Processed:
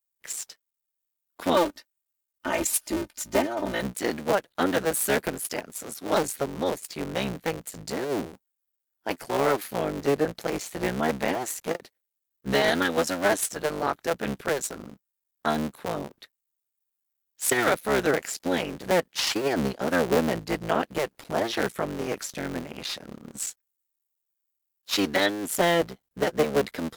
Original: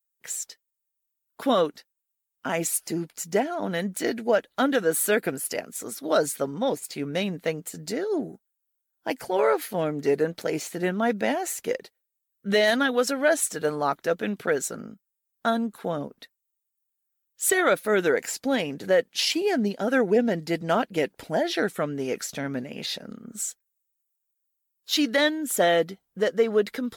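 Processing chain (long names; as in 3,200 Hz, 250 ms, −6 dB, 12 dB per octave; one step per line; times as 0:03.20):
sub-harmonics by changed cycles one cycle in 3, muted
0:01.54–0:03.82: comb filter 3.3 ms, depth 72%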